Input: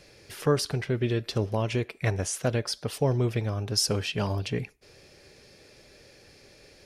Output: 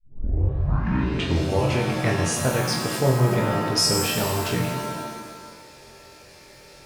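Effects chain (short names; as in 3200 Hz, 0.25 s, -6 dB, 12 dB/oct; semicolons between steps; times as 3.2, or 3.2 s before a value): tape start at the beginning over 1.77 s; flutter echo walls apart 3.9 m, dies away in 0.35 s; shimmer reverb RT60 1.5 s, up +7 st, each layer -2 dB, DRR 3.5 dB; gain +1.5 dB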